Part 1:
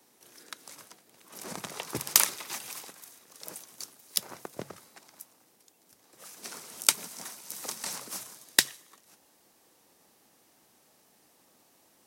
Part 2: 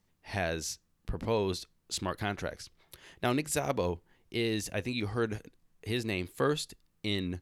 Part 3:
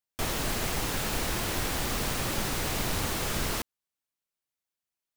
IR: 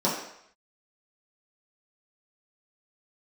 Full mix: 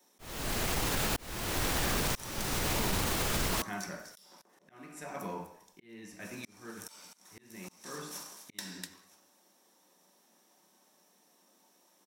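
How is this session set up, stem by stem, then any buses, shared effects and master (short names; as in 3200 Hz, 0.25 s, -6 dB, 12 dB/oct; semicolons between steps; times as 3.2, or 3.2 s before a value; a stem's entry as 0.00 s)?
-12.5 dB, 0.00 s, send -7 dB, echo send -9.5 dB, tilt shelf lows -4.5 dB, about 740 Hz
-13.5 dB, 1.45 s, send -4.5 dB, no echo send, graphic EQ 250/500/2000/4000 Hz -5/-11/+7/-9 dB
+2.0 dB, 0.00 s, no send, no echo send, dry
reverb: on, RT60 0.70 s, pre-delay 3 ms
echo: echo 0.249 s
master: auto swell 0.612 s; limiter -21 dBFS, peak gain reduction 6 dB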